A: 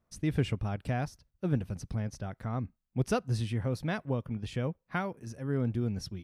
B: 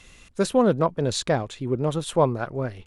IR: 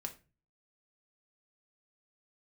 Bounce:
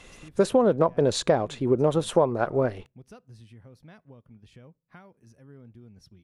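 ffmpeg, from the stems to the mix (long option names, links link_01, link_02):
-filter_complex "[0:a]acompressor=threshold=-42dB:ratio=2,volume=-10.5dB,asplit=2[link_01][link_02];[link_02]volume=-17dB[link_03];[1:a]equalizer=frequency=560:width=0.47:gain=9,volume=-2dB,asplit=2[link_04][link_05];[link_05]volume=-22.5dB[link_06];[2:a]atrim=start_sample=2205[link_07];[link_03][link_06]amix=inputs=2:normalize=0[link_08];[link_08][link_07]afir=irnorm=-1:irlink=0[link_09];[link_01][link_04][link_09]amix=inputs=3:normalize=0,acompressor=threshold=-16dB:ratio=10"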